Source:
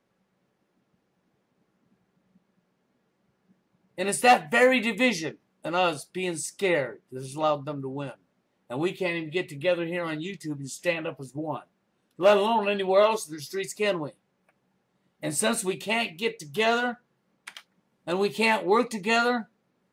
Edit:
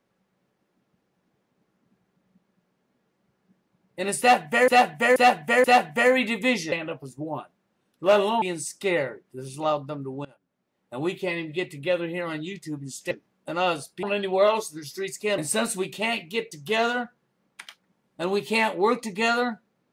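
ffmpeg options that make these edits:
-filter_complex "[0:a]asplit=10[s0][s1][s2][s3][s4][s5][s6][s7][s8][s9];[s0]atrim=end=4.682[s10];[s1]atrim=start=4.198:end=4.682[s11];[s2]atrim=start=4.198:end=4.682[s12];[s3]atrim=start=4.198:end=5.282[s13];[s4]atrim=start=10.888:end=12.592[s14];[s5]atrim=start=6.198:end=8.03,asetpts=PTS-STARTPTS,afade=t=out:st=1.828:d=0.004:c=hsin:silence=0.0891251[s15];[s6]atrim=start=8.03:end=10.892,asetpts=PTS-STARTPTS,afade=t=in:d=0.81:silence=0.0891251[s16];[s7]atrim=start=5.278:end=6.202[s17];[s8]atrim=start=12.588:end=13.942[s18];[s9]atrim=start=15.258[s19];[s10][s11]acrossfade=d=0.004:c1=hsin:c2=hsin[s20];[s20][s12]acrossfade=d=0.004:c1=hsin:c2=hsin[s21];[s21][s13]acrossfade=d=0.004:c1=hsin:c2=hsin[s22];[s22][s14]acrossfade=d=0.004:c1=hsin:c2=hsin[s23];[s15][s16]concat=n=2:v=0:a=1[s24];[s23][s24]acrossfade=d=0.004:c1=hsin:c2=hsin[s25];[s25][s17]acrossfade=d=0.004:c1=hsin:c2=hsin[s26];[s26][s18]acrossfade=d=0.004:c1=hsin:c2=hsin[s27];[s27][s19]acrossfade=d=0.004:c1=hsin:c2=hsin"

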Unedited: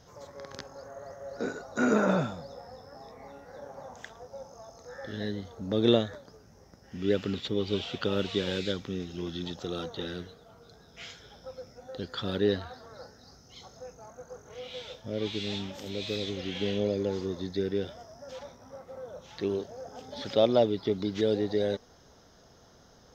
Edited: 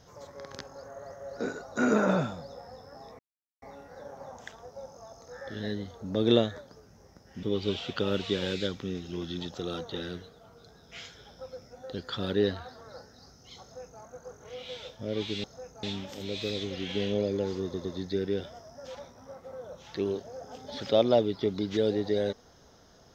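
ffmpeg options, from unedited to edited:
-filter_complex "[0:a]asplit=7[s0][s1][s2][s3][s4][s5][s6];[s0]atrim=end=3.19,asetpts=PTS-STARTPTS,afade=t=out:st=3.186:d=0.004:c=hsin,apad=pad_dur=0.43[s7];[s1]atrim=start=3.19:end=7.002,asetpts=PTS-STARTPTS,afade=t=in:d=0.004:c=hsin[s8];[s2]atrim=start=7.478:end=15.492[s9];[s3]atrim=start=13.668:end=14.062[s10];[s4]atrim=start=15.488:end=17.402[s11];[s5]atrim=start=17.288:end=17.402[s12];[s6]atrim=start=17.288[s13];[s7][s8]concat=n=2:v=0:a=1[s14];[s14][s9]acrossfade=d=0.004:c1=hsin:c2=hsin[s15];[s15][s10]acrossfade=d=0.004:c1=hsin:c2=hsin[s16];[s16][s11]acrossfade=d=0.004:c1=hsin:c2=hsin[s17];[s17][s12]acrossfade=d=0.004:c1=hsin:c2=hsin[s18];[s18][s13]acrossfade=d=0.004:c1=hsin:c2=hsin"

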